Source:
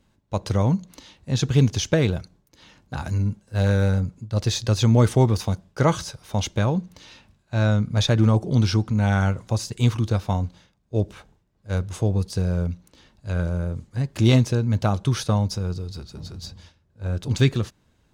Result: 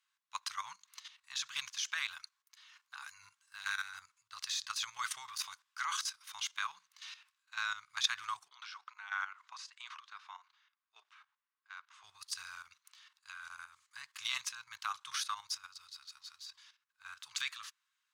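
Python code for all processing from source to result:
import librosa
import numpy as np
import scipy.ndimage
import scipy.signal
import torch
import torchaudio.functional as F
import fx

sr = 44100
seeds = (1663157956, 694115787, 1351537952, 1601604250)

y = fx.chain(x, sr, fx.highpass(hz=420.0, slope=24),
    fx.spacing_loss(db_at_10k=24), at=(8.48, 12.04))
y = scipy.signal.sosfilt(scipy.signal.ellip(4, 1.0, 50, 1100.0, 'highpass', fs=sr, output='sos'), y)
y = fx.level_steps(y, sr, step_db=12)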